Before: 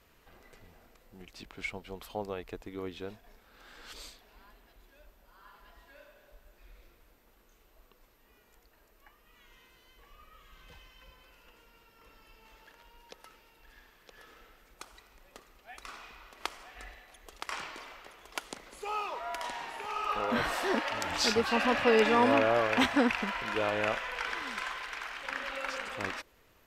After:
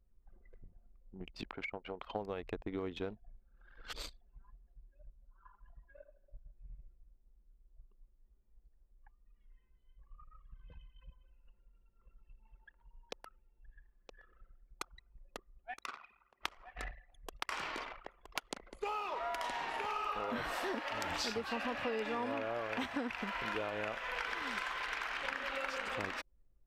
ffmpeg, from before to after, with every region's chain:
-filter_complex "[0:a]asettb=1/sr,asplit=3[s0][s1][s2];[s0]atrim=end=1.444[s3];[s1]atrim=start=1.44:end=2.16,asetpts=PTS-STARTPTS,afade=t=in:d=0.004:c=qsin,afade=t=out:st=0.716:d=0.004:c=qsin,acompressor=threshold=0.00501:ratio=4:attack=3.2:release=140:knee=1:detection=peak,asplit=2[s4][s5];[s5]highpass=f=720:p=1,volume=5.01,asoftclip=type=tanh:threshold=0.0562[s6];[s4][s6]amix=inputs=2:normalize=0,lowpass=f=1400:p=1,volume=0.501[s7];[s2]atrim=start=2.156[s8];[s3][s7]acrossfade=d=0.004:c1=hsin:c2=qsin[s9];[s9][s8]acrossfade=d=0.004:c1=qsin:c2=hsin,asettb=1/sr,asplit=3[s10][s11][s12];[s10]atrim=end=15.744[s13];[s11]atrim=start=15.74:end=16.42,asetpts=PTS-STARTPTS,afade=t=in:d=0.004:c=qsin,afade=t=out:st=0.676:d=0.004:c=qsin,highpass=120,lowshelf=f=390:g=-3.5,tremolo=f=150:d=0.462[s14];[s12]atrim=start=16.416[s15];[s13][s14]acrossfade=d=0.004:c1=hsin:c2=qsin[s16];[s16][s15]acrossfade=d=0.004:c1=qsin:c2=hsin,anlmdn=0.0251,equalizer=f=7900:t=o:w=1.5:g=-3.5,acompressor=threshold=0.00891:ratio=10,volume=2"

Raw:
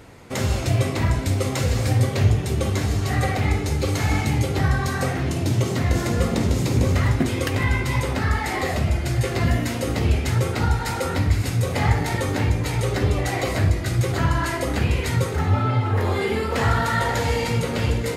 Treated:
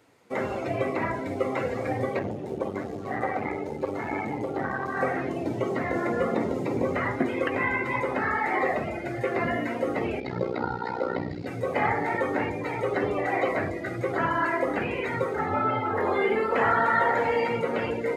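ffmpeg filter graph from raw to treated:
-filter_complex "[0:a]asettb=1/sr,asplit=3[s0][s1][s2];[s0]atrim=end=2.194[s3];[s1]atrim=start=2.19:end=4.97,asetpts=PTS-STARTPTS,afade=t=in:d=0.004:c=qsin,afade=t=out:st=2.776:d=0.004:c=qsin,highshelf=f=2400:g=-7.5,aeval=exprs='clip(val(0),-1,0.0422)':c=same[s4];[s2]atrim=start=4.966[s5];[s3][s4]acrossfade=d=0.004:c1=hsin:c2=qsin[s6];[s6][s5]acrossfade=d=0.004:c1=qsin:c2=hsin,asettb=1/sr,asplit=3[s7][s8][s9];[s7]atrim=end=10.204[s10];[s8]atrim=start=10.2:end=11.47,asetpts=PTS-STARTPTS,afade=t=in:d=0.004:c=qsin,afade=t=out:st=1.266:d=0.004:c=qsin,lowpass=f=4500:t=q:w=3.2,tiltshelf=f=900:g=4,tremolo=f=61:d=0.889[s11];[s9]atrim=start=11.466[s12];[s10][s11]acrossfade=d=0.004:c1=hsin:c2=qsin[s13];[s13][s12]acrossfade=d=0.004:c1=qsin:c2=hsin,acrossover=split=2700[s14][s15];[s15]acompressor=threshold=0.00794:ratio=4:attack=1:release=60[s16];[s14][s16]amix=inputs=2:normalize=0,afftdn=nr=15:nf=-33,highpass=330,volume=1.19"

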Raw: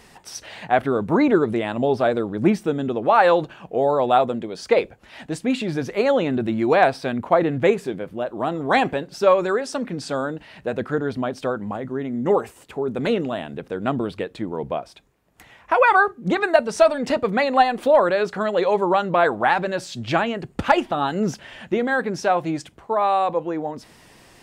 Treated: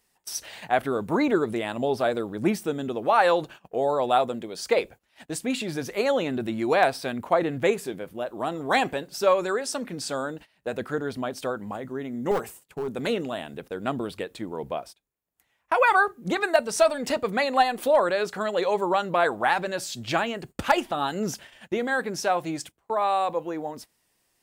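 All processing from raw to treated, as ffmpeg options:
-filter_complex "[0:a]asettb=1/sr,asplit=3[s0][s1][s2];[s0]atrim=end=12.314[s3];[s1]atrim=start=12.31:end=12.88,asetpts=PTS-STARTPTS,afade=t=in:d=0.004:c=qsin,afade=t=out:st=0.566:d=0.004:c=qsin,equalizer=f=160:t=o:w=0.45:g=10.5,aeval=exprs='clip(val(0),-1,0.106)':c=same[s4];[s2]atrim=start=12.876[s5];[s3][s4]acrossfade=d=0.004:c1=hsin:c2=qsin[s6];[s6][s5]acrossfade=d=0.004:c1=qsin:c2=hsin,aemphasis=mode=production:type=50fm,agate=range=0.1:threshold=0.0141:ratio=16:detection=peak,equalizer=f=130:w=0.52:g=-3,volume=0.631"

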